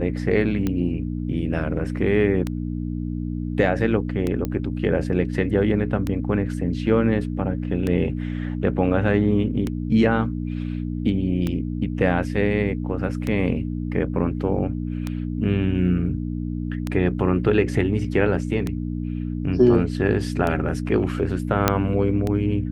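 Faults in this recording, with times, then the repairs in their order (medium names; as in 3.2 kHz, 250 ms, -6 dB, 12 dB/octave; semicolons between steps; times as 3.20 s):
hum 60 Hz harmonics 5 -27 dBFS
tick 33 1/3 rpm -12 dBFS
4.45 s: pop -13 dBFS
21.68 s: pop -1 dBFS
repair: de-click; de-hum 60 Hz, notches 5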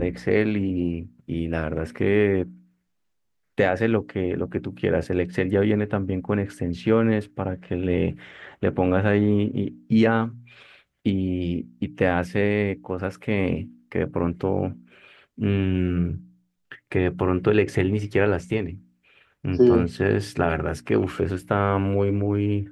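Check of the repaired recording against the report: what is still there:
nothing left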